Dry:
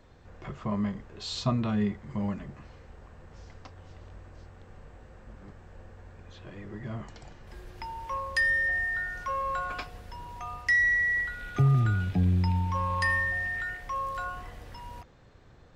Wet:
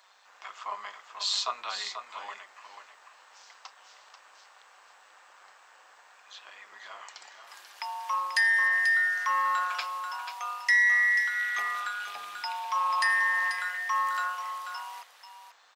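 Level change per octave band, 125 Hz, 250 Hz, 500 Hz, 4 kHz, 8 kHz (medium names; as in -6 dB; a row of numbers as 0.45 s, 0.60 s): under -40 dB, under -35 dB, -10.0 dB, +7.5 dB, +8.0 dB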